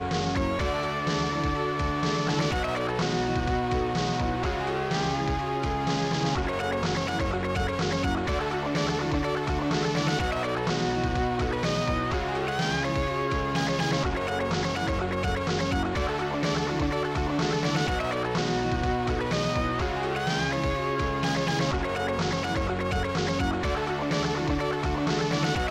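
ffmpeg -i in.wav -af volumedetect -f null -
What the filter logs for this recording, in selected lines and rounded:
mean_volume: -26.9 dB
max_volume: -14.3 dB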